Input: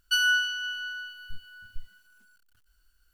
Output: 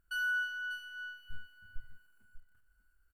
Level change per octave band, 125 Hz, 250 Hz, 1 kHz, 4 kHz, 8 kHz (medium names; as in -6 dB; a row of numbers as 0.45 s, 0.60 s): -4.0 dB, -4.0 dB, no reading, -18.5 dB, -20.5 dB